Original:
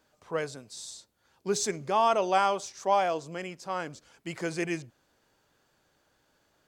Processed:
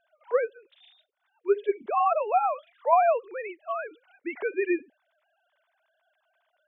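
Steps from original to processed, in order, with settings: formants replaced by sine waves; 0.48–2.93 s: flange 1.2 Hz, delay 0.3 ms, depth 4.5 ms, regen -60%; trim +5 dB

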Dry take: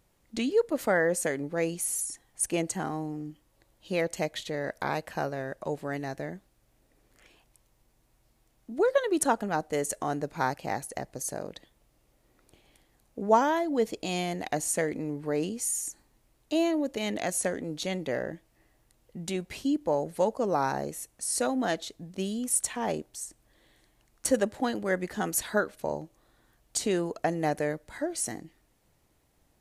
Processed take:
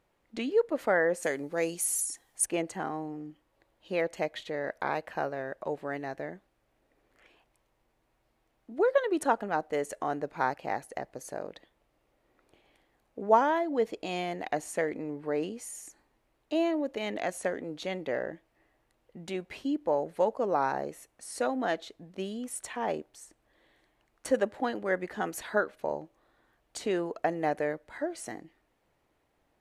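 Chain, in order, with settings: tone controls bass -9 dB, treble -13 dB, from 1.22 s treble +1 dB, from 2.44 s treble -13 dB

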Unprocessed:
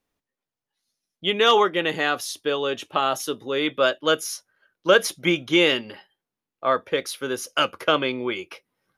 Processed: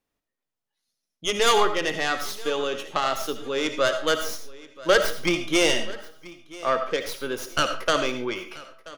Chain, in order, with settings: tracing distortion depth 0.13 ms; feedback delay 982 ms, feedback 31%, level -20 dB; reverberation RT60 0.40 s, pre-delay 35 ms, DRR 8 dB; trim -2.5 dB

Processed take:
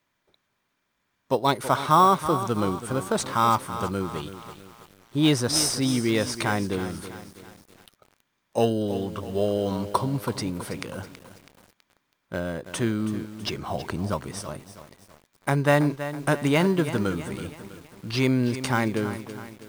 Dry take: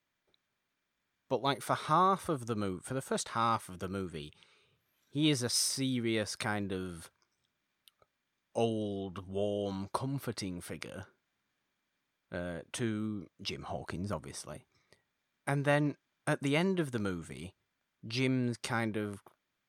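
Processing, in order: peaking EQ 1 kHz +4.5 dB 0.22 oct; in parallel at -11.5 dB: sample-rate reducer 4.5 kHz, jitter 0%; on the sum: bit-crushed delay 326 ms, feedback 55%, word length 8-bit, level -11.5 dB; trim +7 dB

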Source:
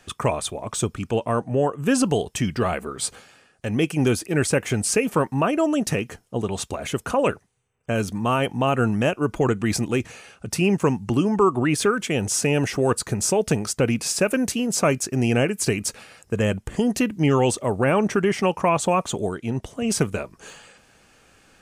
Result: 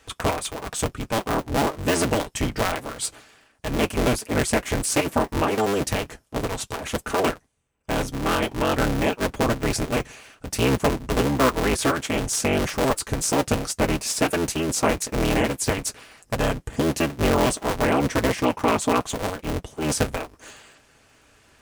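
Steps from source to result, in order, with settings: cycle switcher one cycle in 3, inverted; comb of notches 180 Hz

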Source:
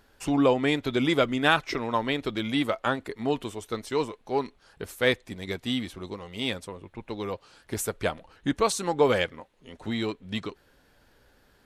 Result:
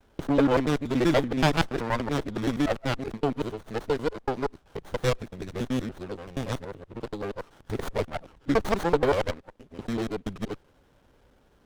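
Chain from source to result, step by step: time reversed locally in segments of 95 ms; gate with hold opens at -56 dBFS; sliding maximum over 17 samples; trim +1.5 dB

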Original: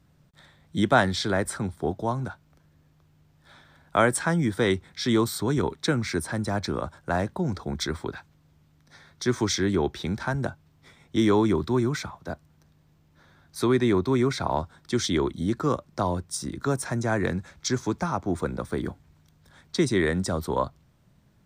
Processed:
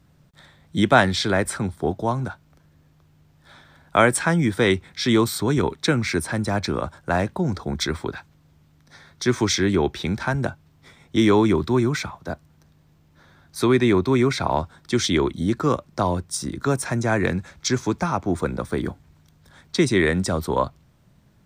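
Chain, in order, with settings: dynamic bell 2.5 kHz, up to +6 dB, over -49 dBFS, Q 2.7; trim +4 dB

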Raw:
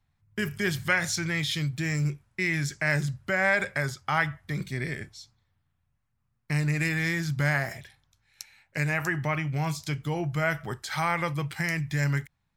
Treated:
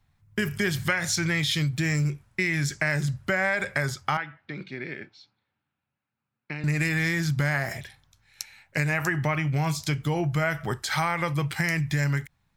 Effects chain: compression 5:1, threshold -28 dBFS, peak gain reduction 8.5 dB; 4.17–6.64 s: cabinet simulation 310–3500 Hz, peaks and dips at 450 Hz -5 dB, 670 Hz -8 dB, 1.1 kHz -9 dB, 1.9 kHz -8 dB, 3.3 kHz -6 dB; trim +6 dB

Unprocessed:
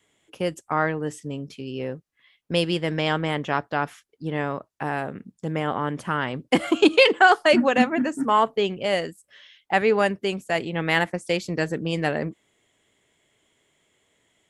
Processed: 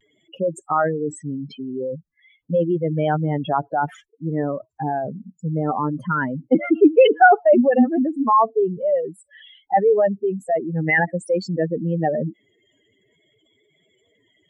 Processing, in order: spectral contrast enhancement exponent 3.6; vibrato 0.53 Hz 34 cents; trim +4.5 dB

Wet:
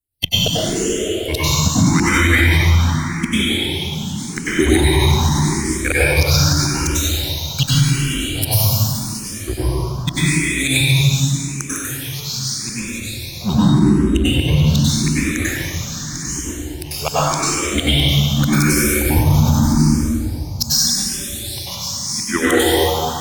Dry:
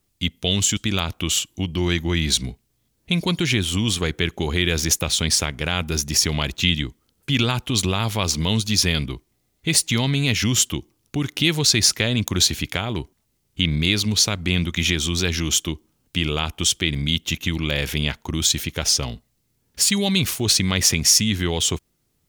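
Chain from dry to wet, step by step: spectral noise reduction 27 dB; tone controls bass +13 dB, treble +11 dB; de-hum 161.7 Hz, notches 9; harmonic-percussive split harmonic -18 dB; in parallel at -8.5 dB: fuzz box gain 27 dB, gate -34 dBFS; on the sum: treble shelf 9.5 kHz +4 dB; inverted gate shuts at -11 dBFS, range -33 dB; reverberation RT60 3.1 s, pre-delay 85 ms, DRR -11.5 dB; speed mistake 25 fps video run at 24 fps; loudness maximiser +9 dB; barber-pole phaser +0.84 Hz; trim -1 dB

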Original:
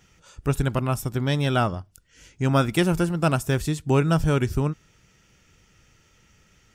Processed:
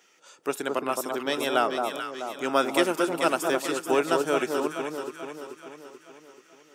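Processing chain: high-pass 320 Hz 24 dB/octave; echo whose repeats swap between lows and highs 217 ms, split 1.2 kHz, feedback 71%, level -3.5 dB

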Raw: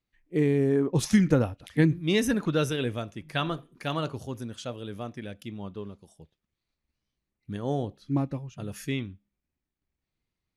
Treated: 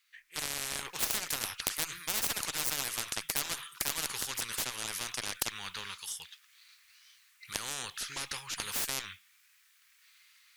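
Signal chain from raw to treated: inverse Chebyshev high-pass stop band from 680 Hz, stop band 40 dB; Chebyshev shaper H 6 -12 dB, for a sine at -16 dBFS; level rider gain up to 11.5 dB; spectrum-flattening compressor 10:1; trim -1.5 dB

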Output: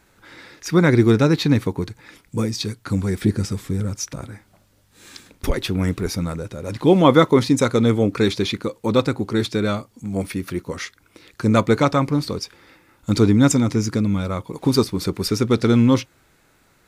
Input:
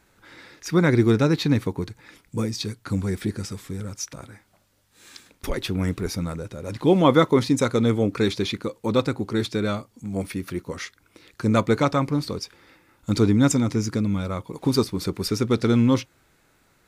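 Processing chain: 3.22–5.51 s: bass shelf 430 Hz +6 dB; trim +3.5 dB

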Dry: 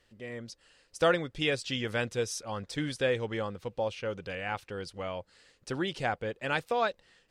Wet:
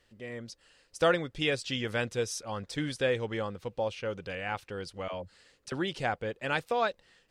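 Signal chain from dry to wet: 5.08–5.72 s: phase dispersion lows, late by 57 ms, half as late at 370 Hz

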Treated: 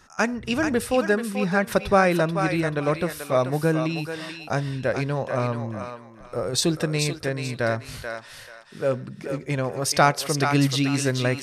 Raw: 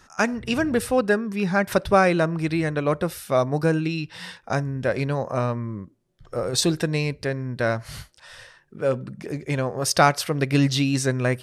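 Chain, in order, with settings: thinning echo 435 ms, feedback 30%, high-pass 710 Hz, level -5 dB; trim -1 dB

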